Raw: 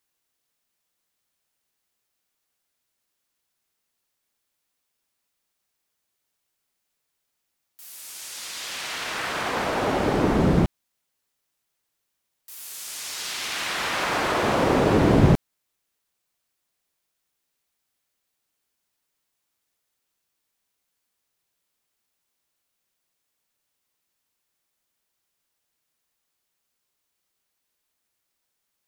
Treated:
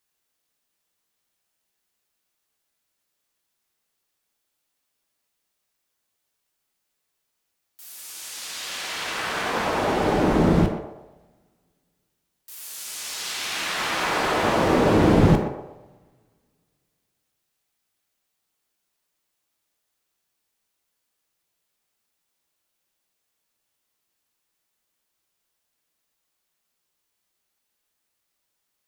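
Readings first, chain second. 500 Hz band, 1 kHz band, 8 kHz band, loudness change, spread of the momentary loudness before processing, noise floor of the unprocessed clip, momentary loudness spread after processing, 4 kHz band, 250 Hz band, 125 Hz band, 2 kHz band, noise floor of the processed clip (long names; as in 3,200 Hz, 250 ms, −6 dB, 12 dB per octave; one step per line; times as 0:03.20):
+1.5 dB, +1.5 dB, +1.0 dB, +1.0 dB, 17 LU, −79 dBFS, 18 LU, +1.0 dB, +1.5 dB, 0.0 dB, +1.0 dB, −78 dBFS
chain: hum removal 69.91 Hz, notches 38
on a send: feedback echo with a band-pass in the loop 123 ms, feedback 46%, band-pass 650 Hz, level −6 dB
on the sum: coupled-rooms reverb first 0.45 s, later 2.4 s, from −27 dB, DRR 6 dB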